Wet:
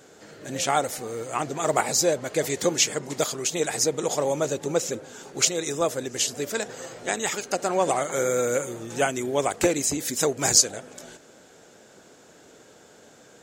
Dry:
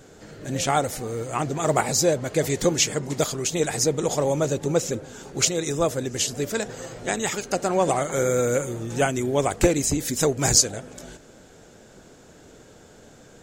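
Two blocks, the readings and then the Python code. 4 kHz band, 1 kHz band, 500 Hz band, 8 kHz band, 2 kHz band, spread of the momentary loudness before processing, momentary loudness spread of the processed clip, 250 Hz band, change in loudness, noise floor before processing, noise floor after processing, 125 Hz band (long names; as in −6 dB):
0.0 dB, −0.5 dB, −2.0 dB, 0.0 dB, 0.0 dB, 9 LU, 10 LU, −4.0 dB, −1.5 dB, −50 dBFS, −53 dBFS, −8.5 dB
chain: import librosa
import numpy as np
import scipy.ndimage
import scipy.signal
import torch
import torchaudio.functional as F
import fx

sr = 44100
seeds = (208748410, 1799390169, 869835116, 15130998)

y = fx.highpass(x, sr, hz=350.0, slope=6)
y = fx.end_taper(y, sr, db_per_s=560.0)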